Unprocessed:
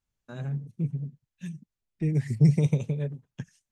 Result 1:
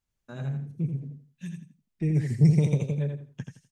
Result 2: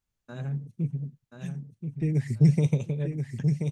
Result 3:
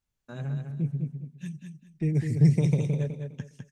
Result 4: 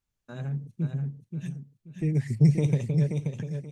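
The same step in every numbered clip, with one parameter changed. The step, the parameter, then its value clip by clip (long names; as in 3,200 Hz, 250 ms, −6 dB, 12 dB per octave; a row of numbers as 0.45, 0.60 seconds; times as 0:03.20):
repeating echo, delay time: 83, 1,031, 204, 530 milliseconds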